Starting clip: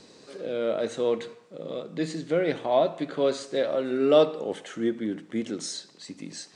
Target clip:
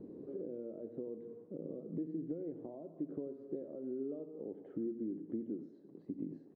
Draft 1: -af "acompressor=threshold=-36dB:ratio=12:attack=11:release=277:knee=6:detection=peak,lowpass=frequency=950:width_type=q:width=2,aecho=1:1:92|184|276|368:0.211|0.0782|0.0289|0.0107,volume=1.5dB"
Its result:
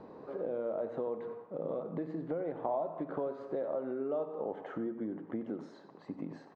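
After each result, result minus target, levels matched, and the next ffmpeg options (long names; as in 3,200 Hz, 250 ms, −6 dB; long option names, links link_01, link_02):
1,000 Hz band +18.0 dB; downward compressor: peak gain reduction −6 dB
-af "acompressor=threshold=-36dB:ratio=12:attack=11:release=277:knee=6:detection=peak,lowpass=frequency=340:width_type=q:width=2,aecho=1:1:92|184|276|368:0.211|0.0782|0.0289|0.0107,volume=1.5dB"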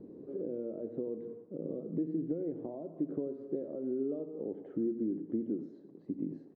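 downward compressor: peak gain reduction −6 dB
-af "acompressor=threshold=-42.5dB:ratio=12:attack=11:release=277:knee=6:detection=peak,lowpass=frequency=340:width_type=q:width=2,aecho=1:1:92|184|276|368:0.211|0.0782|0.0289|0.0107,volume=1.5dB"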